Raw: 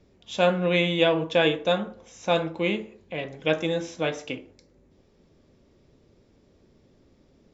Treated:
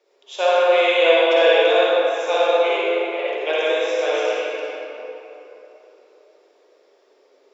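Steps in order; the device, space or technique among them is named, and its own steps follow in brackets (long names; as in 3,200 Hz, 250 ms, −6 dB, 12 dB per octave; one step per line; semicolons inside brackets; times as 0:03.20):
elliptic high-pass filter 400 Hz, stop band 60 dB
tunnel (flutter between parallel walls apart 10.1 metres, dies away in 0.31 s; convolution reverb RT60 3.5 s, pre-delay 47 ms, DRR −8 dB)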